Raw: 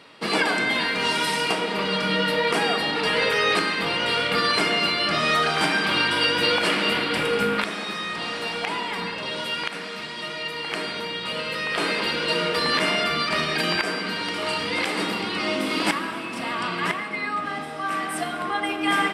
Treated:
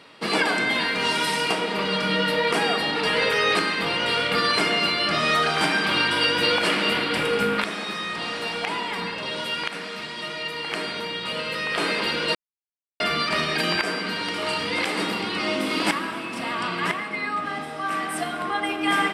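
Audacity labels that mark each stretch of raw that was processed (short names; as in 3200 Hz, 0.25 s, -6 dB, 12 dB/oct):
12.350000	13.000000	mute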